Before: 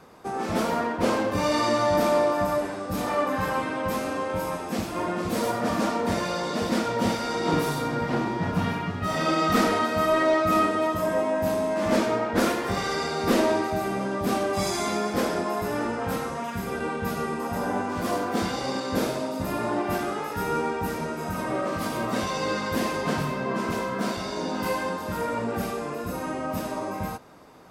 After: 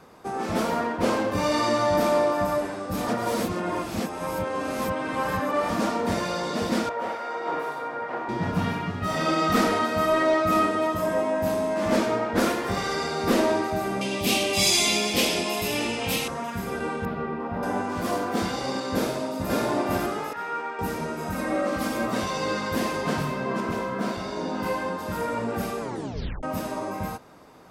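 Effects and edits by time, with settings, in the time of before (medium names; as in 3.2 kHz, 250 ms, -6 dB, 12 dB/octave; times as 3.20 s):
3.08–5.70 s: reverse
6.89–8.29 s: three-band isolator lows -23 dB, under 430 Hz, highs -17 dB, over 2.2 kHz
14.01–16.28 s: resonant high shelf 2 kHz +10 dB, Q 3
17.05–17.63 s: distance through air 400 m
18.94–19.51 s: echo throw 550 ms, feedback 20%, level -1.5 dB
20.33–20.79 s: band-pass filter 1.5 kHz, Q 0.91
21.32–22.08 s: comb 3.7 ms
23.60–24.99 s: treble shelf 3.4 kHz -6.5 dB
25.81 s: tape stop 0.62 s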